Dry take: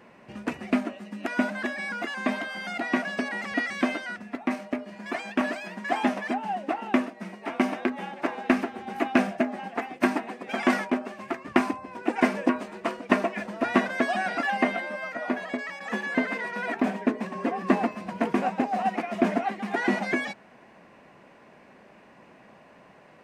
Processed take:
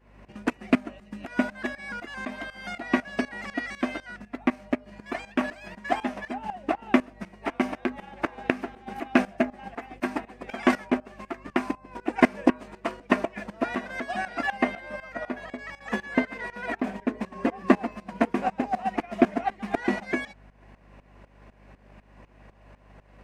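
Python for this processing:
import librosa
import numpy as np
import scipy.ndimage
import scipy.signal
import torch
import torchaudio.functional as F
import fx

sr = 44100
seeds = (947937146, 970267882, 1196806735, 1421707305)

y = fx.transient(x, sr, attack_db=5, sustain_db=-3)
y = fx.add_hum(y, sr, base_hz=50, snr_db=24)
y = fx.tremolo_shape(y, sr, shape='saw_up', hz=4.0, depth_pct=85)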